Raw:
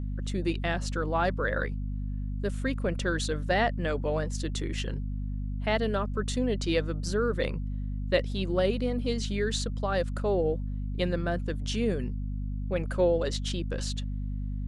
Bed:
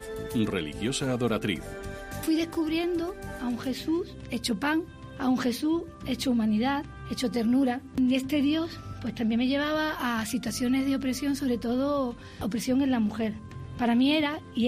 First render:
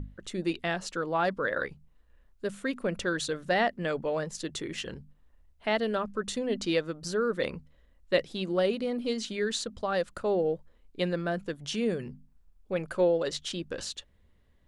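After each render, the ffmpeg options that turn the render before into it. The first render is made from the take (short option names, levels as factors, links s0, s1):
-af "bandreject=f=50:t=h:w=6,bandreject=f=100:t=h:w=6,bandreject=f=150:t=h:w=6,bandreject=f=200:t=h:w=6,bandreject=f=250:t=h:w=6"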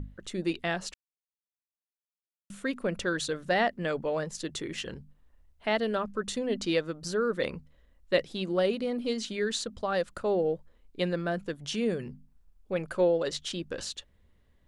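-filter_complex "[0:a]asplit=3[s0][s1][s2];[s0]atrim=end=0.94,asetpts=PTS-STARTPTS,afade=t=out:st=0.936:d=0.004:c=hsin[s3];[s1]atrim=start=0.94:end=2.5,asetpts=PTS-STARTPTS,volume=0[s4];[s2]atrim=start=2.5,asetpts=PTS-STARTPTS,afade=t=in:d=0.004:c=hsin[s5];[s3][s4][s5]concat=n=3:v=0:a=1"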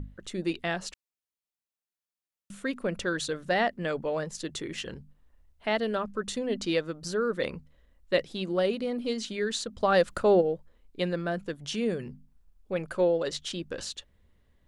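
-filter_complex "[0:a]asplit=3[s0][s1][s2];[s0]afade=t=out:st=9.8:d=0.02[s3];[s1]acontrast=67,afade=t=in:st=9.8:d=0.02,afade=t=out:st=10.4:d=0.02[s4];[s2]afade=t=in:st=10.4:d=0.02[s5];[s3][s4][s5]amix=inputs=3:normalize=0"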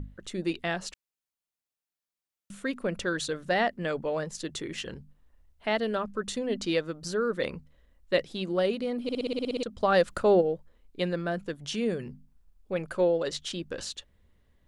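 -filter_complex "[0:a]asplit=11[s0][s1][s2][s3][s4][s5][s6][s7][s8][s9][s10];[s0]atrim=end=9.092[s11];[s1]atrim=start=9.028:end=9.092[s12];[s2]atrim=start=9.028:end=9.092[s13];[s3]atrim=start=9.028:end=9.092[s14];[s4]atrim=start=9.028:end=9.092[s15];[s5]atrim=start=9.028:end=9.092[s16];[s6]atrim=start=9.028:end=9.092[s17];[s7]atrim=start=9.028:end=9.092[s18];[s8]atrim=start=9.028:end=9.092[s19];[s9]atrim=start=9.028:end=9.092[s20];[s10]atrim=start=9.628[s21];[s11][s12]acrossfade=d=0.004:c1=hsin:c2=hsin[s22];[s22][s13]acrossfade=d=0.004:c1=hsin:c2=hsin[s23];[s23][s14]acrossfade=d=0.004:c1=hsin:c2=hsin[s24];[s24][s15]acrossfade=d=0.004:c1=hsin:c2=hsin[s25];[s25][s16]acrossfade=d=0.004:c1=hsin:c2=hsin[s26];[s26][s17]acrossfade=d=0.004:c1=hsin:c2=hsin[s27];[s27][s18]acrossfade=d=0.004:c1=hsin:c2=hsin[s28];[s28][s19]acrossfade=d=0.004:c1=hsin:c2=hsin[s29];[s29][s20]acrossfade=d=0.004:c1=hsin:c2=hsin[s30];[s30][s21]acrossfade=d=0.004:c1=hsin:c2=hsin"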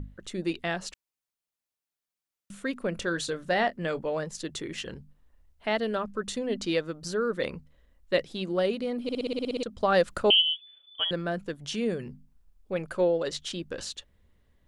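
-filter_complex "[0:a]asettb=1/sr,asplit=3[s0][s1][s2];[s0]atrim=end=2.924[s3];[s1]atrim=start=2.92:end=4.07,asetpts=PTS-STARTPTS,afade=t=in:d=0.004:c=qsin,afade=t=out:st=1.146:d=0.004:c=qsin,asplit=2[s4][s5];[s5]adelay=24,volume=0.224[s6];[s4][s6]amix=inputs=2:normalize=0,atrim=end_sample=50715[s7];[s2]atrim=start=4.066[s8];[s3][s7]acrossfade=d=0.004:c1=hsin:c2=qsin[s9];[s9][s8]acrossfade=d=0.004:c1=qsin:c2=hsin,asettb=1/sr,asplit=3[s10][s11][s12];[s10]atrim=end=10.304[s13];[s11]atrim=start=10.3:end=11.11,asetpts=PTS-STARTPTS,afade=t=in:d=0.004:c=qsin,afade=t=out:st=0.806:d=0.004:c=qsin,lowpass=f=3000:t=q:w=0.5098,lowpass=f=3000:t=q:w=0.6013,lowpass=f=3000:t=q:w=0.9,lowpass=f=3000:t=q:w=2.563,afreqshift=-3500[s14];[s12]atrim=start=11.106[s15];[s13][s14]acrossfade=d=0.004:c1=hsin:c2=qsin[s16];[s16][s15]acrossfade=d=0.004:c1=qsin:c2=hsin"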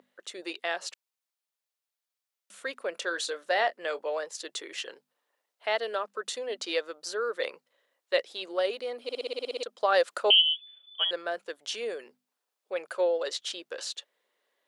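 -af "highpass=f=450:w=0.5412,highpass=f=450:w=1.3066,equalizer=f=4100:w=1.5:g=2"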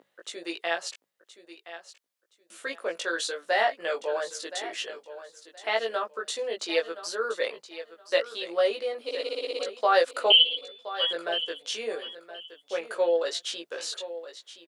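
-filter_complex "[0:a]asplit=2[s0][s1];[s1]adelay=18,volume=0.794[s2];[s0][s2]amix=inputs=2:normalize=0,aecho=1:1:1021|2042:0.211|0.0444"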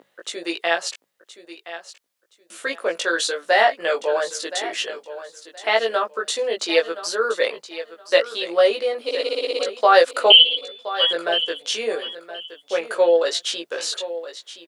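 -af "volume=2.51,alimiter=limit=0.891:level=0:latency=1"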